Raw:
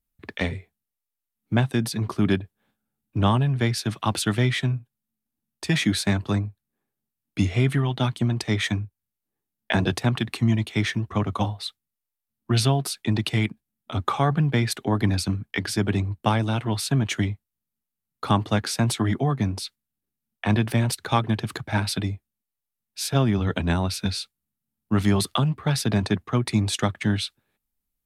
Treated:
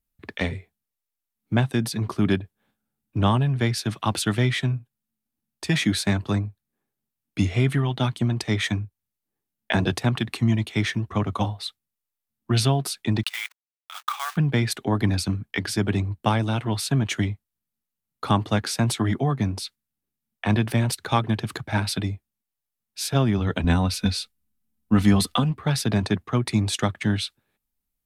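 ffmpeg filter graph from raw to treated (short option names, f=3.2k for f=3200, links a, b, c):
-filter_complex "[0:a]asettb=1/sr,asplit=3[a][b][c];[a]atrim=end=13.234[d];[b]atrim=start=13.23:end=14.37,asetpts=PTS-STARTPTS,afade=t=in:d=0.004:c=qsin,afade=t=out:st=1.136:d=0.004:c=qsin,acrusher=bits=4:mode=log:mix=0:aa=0.000001,aeval=exprs='sgn(val(0))*max(abs(val(0))-0.00631,0)':c=same,highpass=f=1.1k:w=0.5412,highpass=f=1.1k:w=1.3066[e];[c]atrim=start=14.366[f];[d][e]acrossfade=d=0.004:c1=hsin:c2=qsin[g];[g][f]acrossfade=d=0.004:c1=qsin:c2=hsin,asettb=1/sr,asplit=3[h][i][j];[h]atrim=end=23.644[k];[i]atrim=start=23.64:end=25.51,asetpts=PTS-STARTPTS,afade=t=in:d=0.004:c=qsin,afade=t=out:st=1.866:d=0.004:c=qsin,lowshelf=f=100:g=10,aecho=1:1:4:0.55,atrim=end_sample=82467[l];[j]atrim=start=25.506[m];[k][l]acrossfade=d=0.004:c1=hsin:c2=qsin[n];[n][m]acrossfade=d=0.004:c1=qsin:c2=hsin"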